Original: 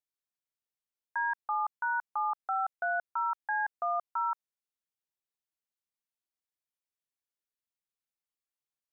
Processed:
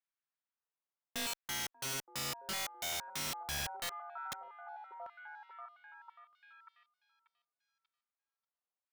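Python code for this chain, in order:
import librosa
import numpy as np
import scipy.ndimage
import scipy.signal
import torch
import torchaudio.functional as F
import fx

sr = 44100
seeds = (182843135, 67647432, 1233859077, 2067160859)

p1 = fx.differentiator(x, sr, at=(3.89, 4.32))
p2 = fx.clip_asym(p1, sr, top_db=-36.5, bottom_db=-27.5)
p3 = p2 + fx.echo_stepped(p2, sr, ms=588, hz=370.0, octaves=0.7, feedback_pct=70, wet_db=-8.5, dry=0)
p4 = fx.filter_lfo_bandpass(p3, sr, shape='saw_down', hz=0.79, low_hz=740.0, high_hz=1700.0, q=1.2)
p5 = (np.mod(10.0 ** (35.5 / 20.0) * p4 + 1.0, 2.0) - 1.0) / 10.0 ** (35.5 / 20.0)
y = p5 * 10.0 ** (2.5 / 20.0)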